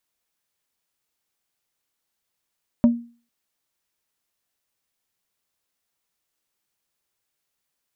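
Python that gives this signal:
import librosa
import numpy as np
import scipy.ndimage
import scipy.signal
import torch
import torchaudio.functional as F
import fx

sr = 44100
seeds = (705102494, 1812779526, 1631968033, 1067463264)

y = fx.strike_wood(sr, length_s=0.45, level_db=-8.5, body='plate', hz=236.0, decay_s=0.38, tilt_db=11.0, modes=5)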